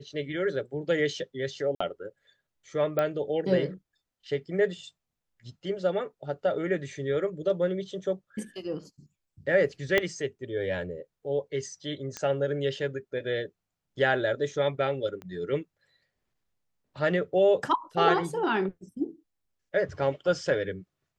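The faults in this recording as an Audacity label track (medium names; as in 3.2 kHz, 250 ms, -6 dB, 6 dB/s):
1.750000	1.800000	dropout 55 ms
2.990000	2.990000	pop -15 dBFS
9.980000	9.980000	pop -10 dBFS
12.170000	12.170000	pop -19 dBFS
15.220000	15.220000	pop -28 dBFS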